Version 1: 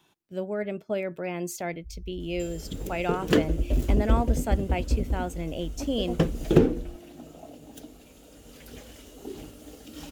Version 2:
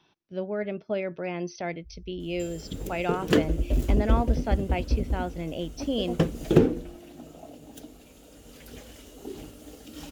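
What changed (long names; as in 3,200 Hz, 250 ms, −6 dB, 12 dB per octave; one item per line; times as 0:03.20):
speech: add linear-phase brick-wall low-pass 6,200 Hz
first sound: add spectral tilt +1.5 dB per octave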